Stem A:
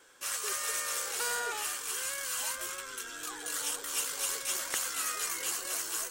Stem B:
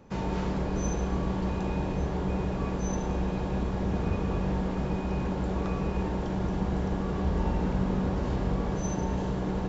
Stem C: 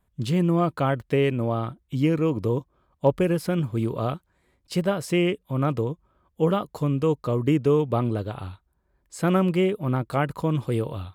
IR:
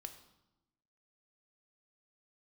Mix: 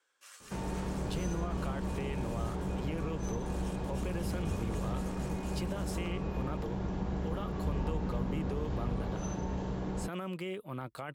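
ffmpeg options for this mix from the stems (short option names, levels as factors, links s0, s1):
-filter_complex "[0:a]highshelf=f=8900:g=-12,volume=0.178[s0];[1:a]adelay=400,volume=0.531[s1];[2:a]adelay=850,volume=0.447[s2];[s0][s2]amix=inputs=2:normalize=0,lowshelf=f=500:g=-10.5,alimiter=level_in=1.68:limit=0.0631:level=0:latency=1:release=18,volume=0.596,volume=1[s3];[s1][s3]amix=inputs=2:normalize=0,acrossover=split=180[s4][s5];[s5]acompressor=threshold=0.0178:ratio=6[s6];[s4][s6]amix=inputs=2:normalize=0"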